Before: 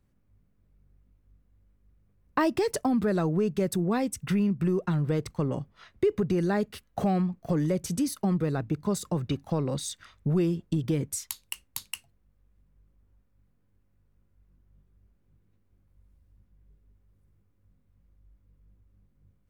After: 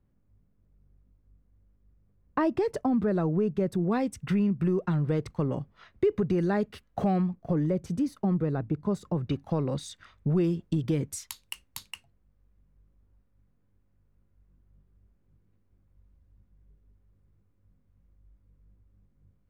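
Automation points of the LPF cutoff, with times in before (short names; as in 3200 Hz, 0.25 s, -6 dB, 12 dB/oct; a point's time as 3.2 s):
LPF 6 dB/oct
1200 Hz
from 3.84 s 2900 Hz
from 7.35 s 1100 Hz
from 9.27 s 2700 Hz
from 10.44 s 5400 Hz
from 11.91 s 2300 Hz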